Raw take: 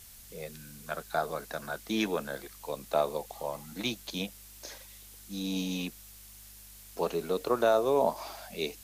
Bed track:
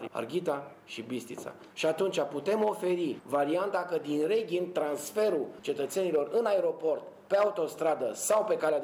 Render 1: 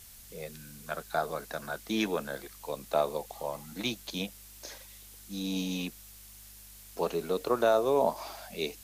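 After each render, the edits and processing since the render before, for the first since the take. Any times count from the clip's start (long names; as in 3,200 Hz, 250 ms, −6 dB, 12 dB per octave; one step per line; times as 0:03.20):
no processing that can be heard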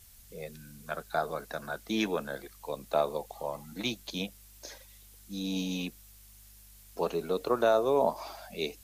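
broadband denoise 6 dB, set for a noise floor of −51 dBFS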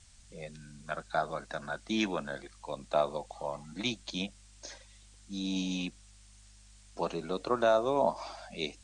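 Butterworth low-pass 9,100 Hz 72 dB per octave
parametric band 440 Hz −9.5 dB 0.25 octaves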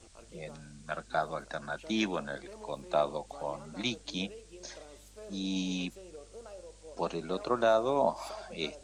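mix in bed track −21 dB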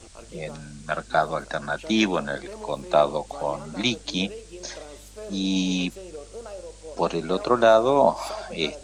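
level +9.5 dB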